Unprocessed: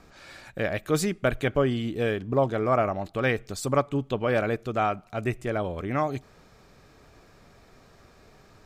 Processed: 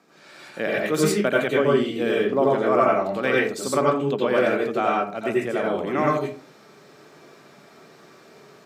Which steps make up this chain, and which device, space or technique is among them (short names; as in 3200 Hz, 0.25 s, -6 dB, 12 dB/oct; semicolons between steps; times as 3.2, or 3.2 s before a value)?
far laptop microphone (reverb RT60 0.35 s, pre-delay 81 ms, DRR -3.5 dB; HPF 180 Hz 24 dB/oct; AGC gain up to 6.5 dB); gain -4.5 dB